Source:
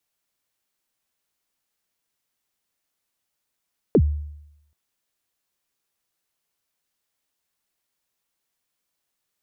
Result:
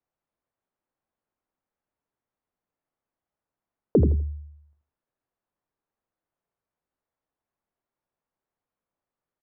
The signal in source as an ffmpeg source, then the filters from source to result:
-f lavfi -i "aevalsrc='0.316*pow(10,-3*t/0.84)*sin(2*PI*(520*0.062/log(74/520)*(exp(log(74/520)*min(t,0.062)/0.062)-1)+74*max(t-0.062,0)))':d=0.78:s=44100"
-af "lowpass=1.1k,bandreject=f=50:t=h:w=6,bandreject=f=100:t=h:w=6,bandreject=f=150:t=h:w=6,bandreject=f=200:t=h:w=6,bandreject=f=250:t=h:w=6,bandreject=f=300:t=h:w=6,bandreject=f=350:t=h:w=6,bandreject=f=400:t=h:w=6,aecho=1:1:82|164|246:0.398|0.0836|0.0176"

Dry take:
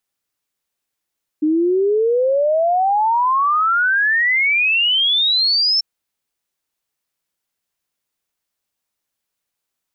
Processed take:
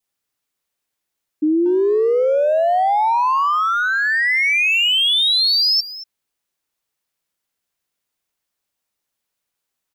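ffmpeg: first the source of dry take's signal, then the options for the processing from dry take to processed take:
-f lavfi -i "aevalsrc='0.224*clip(min(t,4.39-t)/0.01,0,1)*sin(2*PI*300*4.39/log(5400/300)*(exp(log(5400/300)*t/4.39)-1))':d=4.39:s=44100"
-filter_complex "[0:a]adynamicequalizer=threshold=0.0316:dfrequency=1500:dqfactor=2.1:tfrequency=1500:tqfactor=2.1:attack=5:release=100:ratio=0.375:range=1.5:mode=cutabove:tftype=bell,asplit=2[a][b];[b]adelay=230,highpass=300,lowpass=3.4k,asoftclip=type=hard:threshold=-23dB,volume=-7dB[c];[a][c]amix=inputs=2:normalize=0"

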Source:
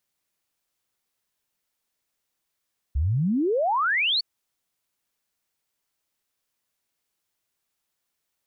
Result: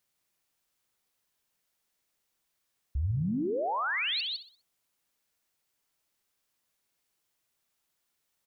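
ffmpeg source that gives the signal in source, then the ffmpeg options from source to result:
-f lavfi -i "aevalsrc='0.1*clip(min(t,1.26-t)/0.01,0,1)*sin(2*PI*63*1.26/log(4600/63)*(exp(log(4600/63)*t/1.26)-1))':d=1.26:s=44100"
-filter_complex "[0:a]asplit=2[a][b];[b]aecho=0:1:158:0.266[c];[a][c]amix=inputs=2:normalize=0,alimiter=level_in=2dB:limit=-24dB:level=0:latency=1:release=14,volume=-2dB,asplit=2[d][e];[e]aecho=0:1:63|126|189|252:0.237|0.0901|0.0342|0.013[f];[d][f]amix=inputs=2:normalize=0"

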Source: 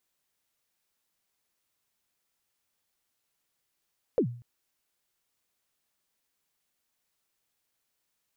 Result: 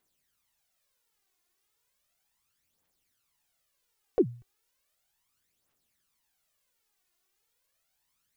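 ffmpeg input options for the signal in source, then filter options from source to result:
-f lavfi -i "aevalsrc='0.126*pow(10,-3*t/0.47)*sin(2*PI*(550*0.087/log(120/550)*(exp(log(120/550)*min(t,0.087)/0.087)-1)+120*max(t-0.087,0)))':d=0.24:s=44100"
-af "aphaser=in_gain=1:out_gain=1:delay=2.9:decay=0.61:speed=0.35:type=triangular"

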